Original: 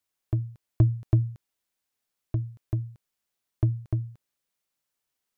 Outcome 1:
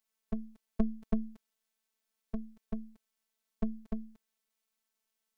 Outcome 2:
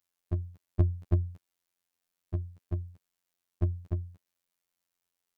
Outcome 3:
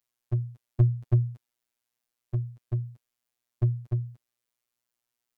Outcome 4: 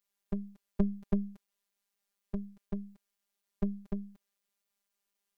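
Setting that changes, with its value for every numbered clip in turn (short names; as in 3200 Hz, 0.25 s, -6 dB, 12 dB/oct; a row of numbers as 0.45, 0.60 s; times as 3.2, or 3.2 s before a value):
robotiser, frequency: 220, 88, 120, 200 Hz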